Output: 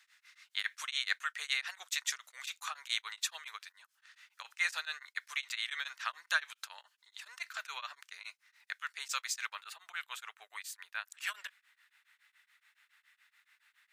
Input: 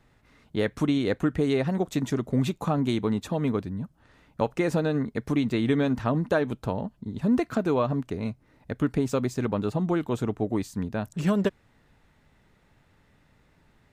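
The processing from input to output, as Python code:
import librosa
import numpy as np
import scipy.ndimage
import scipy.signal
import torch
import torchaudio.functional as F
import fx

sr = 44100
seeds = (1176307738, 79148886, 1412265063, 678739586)

y = scipy.signal.sosfilt(scipy.signal.cheby2(4, 80, 260.0, 'highpass', fs=sr, output='sos'), x)
y = fx.peak_eq(y, sr, hz=5800.0, db=fx.steps((0.0, 4.0), (9.55, -5.0)), octaves=1.1)
y = y * np.abs(np.cos(np.pi * 7.1 * np.arange(len(y)) / sr))
y = y * 10.0 ** (6.0 / 20.0)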